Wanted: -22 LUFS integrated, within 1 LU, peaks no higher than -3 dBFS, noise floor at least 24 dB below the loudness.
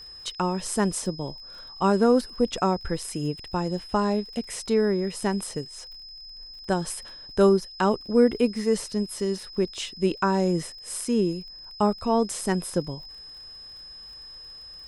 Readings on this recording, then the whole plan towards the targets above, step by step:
tick rate 36 per s; steady tone 5.1 kHz; tone level -41 dBFS; loudness -25.5 LUFS; peak level -7.5 dBFS; loudness target -22.0 LUFS
-> de-click; band-stop 5.1 kHz, Q 30; trim +3.5 dB

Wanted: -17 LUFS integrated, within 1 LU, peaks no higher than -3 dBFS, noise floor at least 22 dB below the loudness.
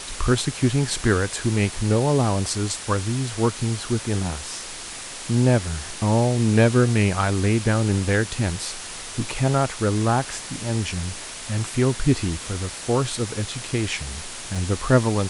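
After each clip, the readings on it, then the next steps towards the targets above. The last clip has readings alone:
dropouts 1; longest dropout 4.1 ms; noise floor -35 dBFS; noise floor target -45 dBFS; loudness -23.0 LUFS; peak level -5.0 dBFS; loudness target -17.0 LUFS
-> interpolate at 14.55 s, 4.1 ms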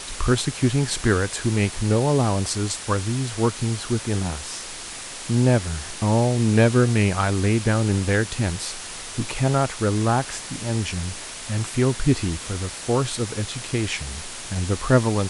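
dropouts 0; noise floor -35 dBFS; noise floor target -45 dBFS
-> noise reduction 10 dB, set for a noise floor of -35 dBFS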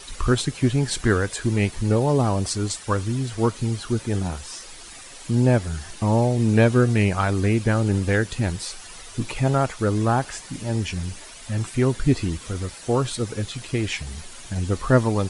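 noise floor -41 dBFS; noise floor target -45 dBFS
-> noise reduction 6 dB, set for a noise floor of -41 dBFS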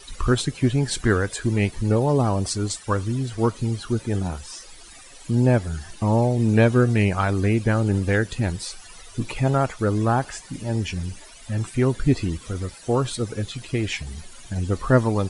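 noise floor -44 dBFS; noise floor target -45 dBFS
-> noise reduction 6 dB, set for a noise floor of -44 dBFS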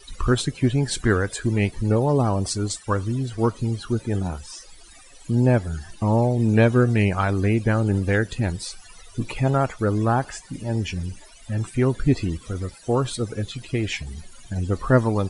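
noise floor -47 dBFS; loudness -23.0 LUFS; peak level -5.0 dBFS; loudness target -17.0 LUFS
-> trim +6 dB; peak limiter -3 dBFS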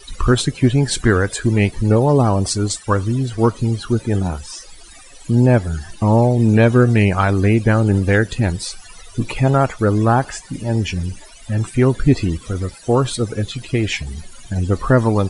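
loudness -17.5 LUFS; peak level -3.0 dBFS; noise floor -41 dBFS

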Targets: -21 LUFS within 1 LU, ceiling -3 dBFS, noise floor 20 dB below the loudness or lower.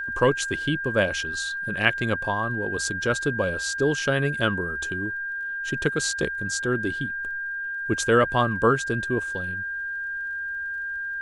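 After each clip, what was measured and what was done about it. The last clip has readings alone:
tick rate 23 per s; steady tone 1.6 kHz; tone level -28 dBFS; loudness -25.5 LUFS; peak level -3.0 dBFS; loudness target -21.0 LUFS
-> de-click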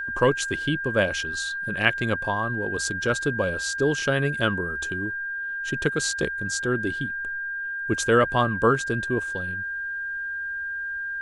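tick rate 0.089 per s; steady tone 1.6 kHz; tone level -28 dBFS
-> band-stop 1.6 kHz, Q 30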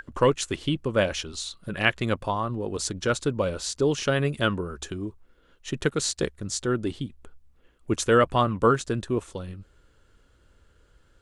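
steady tone not found; loudness -26.5 LUFS; peak level -4.0 dBFS; loudness target -21.0 LUFS
-> trim +5.5 dB; peak limiter -3 dBFS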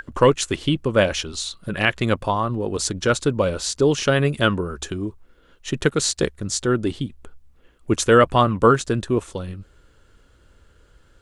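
loudness -21.0 LUFS; peak level -3.0 dBFS; noise floor -56 dBFS

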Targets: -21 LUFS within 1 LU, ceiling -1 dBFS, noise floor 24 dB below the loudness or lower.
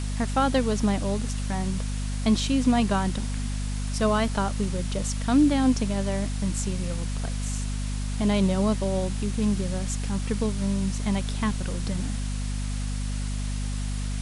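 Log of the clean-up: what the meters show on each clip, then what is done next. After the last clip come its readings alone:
hum 50 Hz; highest harmonic 250 Hz; hum level -26 dBFS; noise floor -29 dBFS; noise floor target -51 dBFS; loudness -26.5 LUFS; peak level -10.5 dBFS; loudness target -21.0 LUFS
-> de-hum 50 Hz, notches 5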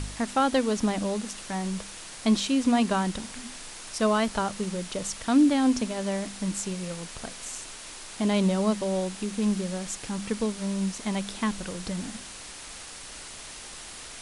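hum not found; noise floor -42 dBFS; noise floor target -52 dBFS
-> noise print and reduce 10 dB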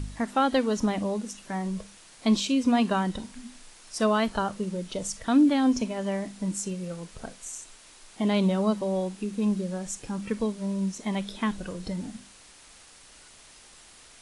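noise floor -52 dBFS; loudness -27.5 LUFS; peak level -11.5 dBFS; loudness target -21.0 LUFS
-> trim +6.5 dB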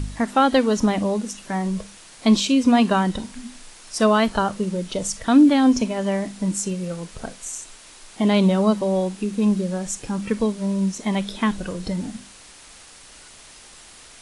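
loudness -21.0 LUFS; peak level -5.0 dBFS; noise floor -46 dBFS

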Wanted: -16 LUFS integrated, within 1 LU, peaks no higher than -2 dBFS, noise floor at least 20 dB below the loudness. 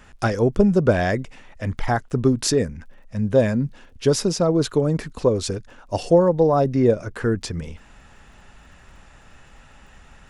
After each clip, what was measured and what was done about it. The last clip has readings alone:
tick rate 23 per s; loudness -21.0 LUFS; peak level -4.0 dBFS; loudness target -16.0 LUFS
-> de-click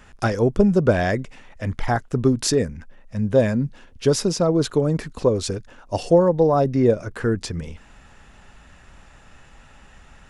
tick rate 0 per s; loudness -21.0 LUFS; peak level -4.0 dBFS; loudness target -16.0 LUFS
-> trim +5 dB; peak limiter -2 dBFS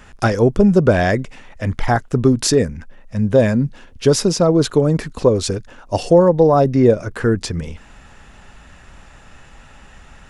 loudness -16.5 LUFS; peak level -2.0 dBFS; noise floor -44 dBFS

